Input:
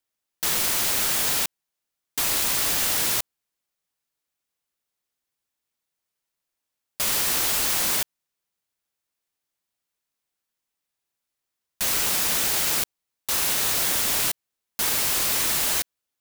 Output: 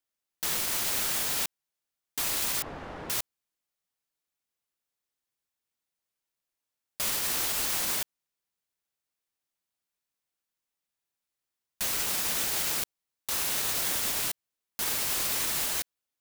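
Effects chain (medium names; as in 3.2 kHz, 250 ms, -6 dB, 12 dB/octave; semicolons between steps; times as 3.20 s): 2.62–3.10 s: low-pass 1 kHz 12 dB/octave; peak limiter -14.5 dBFS, peak gain reduction 4 dB; trim -4.5 dB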